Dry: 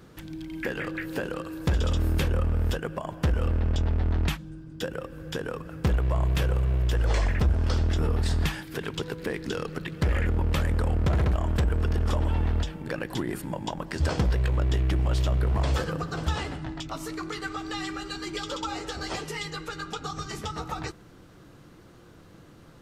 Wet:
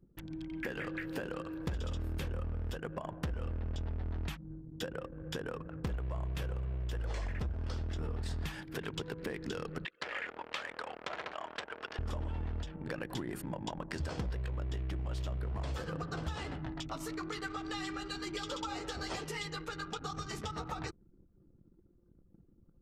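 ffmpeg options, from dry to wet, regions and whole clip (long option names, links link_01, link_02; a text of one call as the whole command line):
ffmpeg -i in.wav -filter_complex "[0:a]asettb=1/sr,asplit=3[link_01][link_02][link_03];[link_01]atrim=end=9.854[link_04];[link_02]atrim=start=9.85:end=11.99,asetpts=PTS-STARTPTS,afade=type=in:duration=0.004:curve=qsin,afade=type=out:start_time=2.136:duration=0.004:curve=qsin,highpass=690,lowpass=4300,highshelf=frequency=2200:gain=7[link_05];[link_03]atrim=start=11.986[link_06];[link_04][link_05]acrossfade=duration=0.004:curve1=hsin:curve2=qsin[link_07];[link_07][link_06]acrossfade=duration=0.004:curve1=qsin:curve2=hsin,anlmdn=0.158,acompressor=threshold=-30dB:ratio=5,volume=-4.5dB" out.wav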